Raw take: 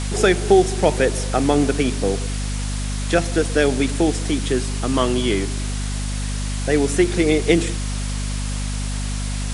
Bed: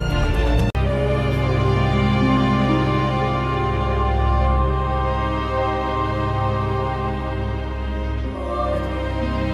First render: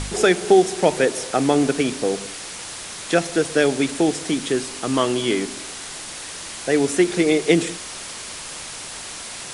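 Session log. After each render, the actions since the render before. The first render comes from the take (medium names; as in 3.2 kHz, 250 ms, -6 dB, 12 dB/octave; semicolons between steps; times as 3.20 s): de-hum 50 Hz, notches 5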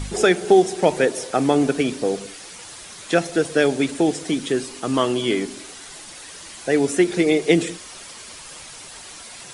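noise reduction 8 dB, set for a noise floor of -34 dBFS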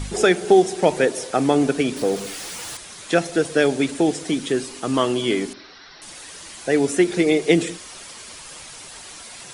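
1.96–2.77 s: jump at every zero crossing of -32 dBFS; 5.53–6.02 s: rippled Chebyshev low-pass 5.7 kHz, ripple 6 dB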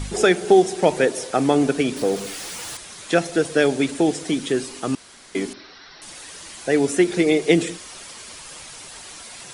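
4.95–5.35 s: room tone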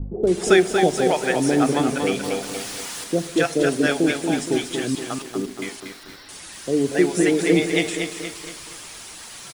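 bands offset in time lows, highs 270 ms, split 570 Hz; bit-crushed delay 235 ms, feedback 55%, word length 7-bit, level -6 dB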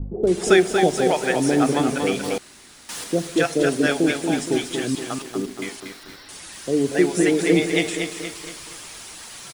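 2.38–2.89 s: room tone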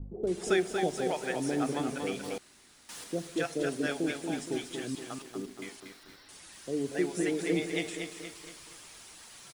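trim -12 dB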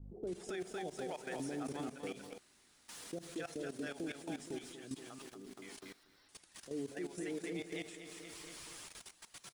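level held to a coarse grid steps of 17 dB; peak limiter -33 dBFS, peak gain reduction 10.5 dB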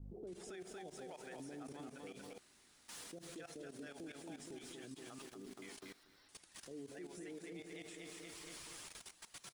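compression 1.5:1, threshold -45 dBFS, peak gain reduction 3 dB; peak limiter -42 dBFS, peak gain reduction 8 dB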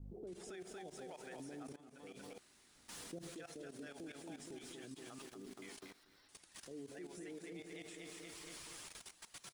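1.76–2.23 s: fade in, from -17 dB; 2.75–3.29 s: bass shelf 420 Hz +7 dB; 5.86–6.39 s: transformer saturation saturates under 810 Hz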